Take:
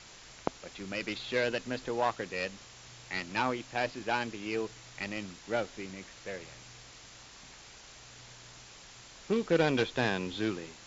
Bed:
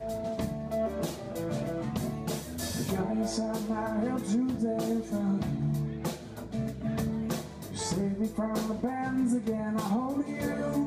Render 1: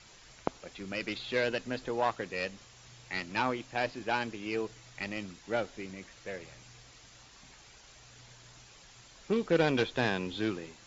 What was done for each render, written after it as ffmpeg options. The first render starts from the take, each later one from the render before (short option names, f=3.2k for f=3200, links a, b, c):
-af "afftdn=nr=6:nf=-52"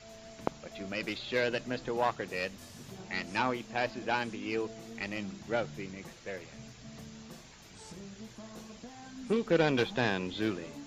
-filter_complex "[1:a]volume=-17.5dB[a];[0:a][a]amix=inputs=2:normalize=0"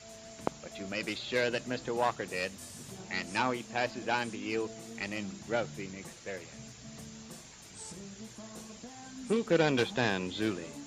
-af "highpass=44,equalizer=f=8.7k:w=1.5:g=12"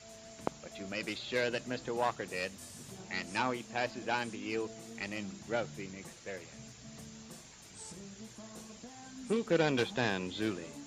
-af "volume=-2.5dB"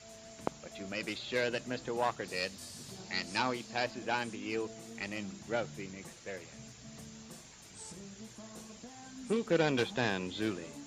-filter_complex "[0:a]asettb=1/sr,asplit=3[a][b][c];[a]atrim=end=2.244[d];[b]atrim=start=2.24:end=3.84,asetpts=PTS-STARTPTS,afade=t=in:d=0.004:c=qsin,afade=t=out:st=1.596:d=0.004:c=qsin,equalizer=f=4.5k:t=o:w=0.54:g=8[e];[c]atrim=start=3.836[f];[d][e]acrossfade=d=0.004:c1=hsin:c2=qsin[g];[g][f]acrossfade=d=0.004:c1=qsin:c2=hsin"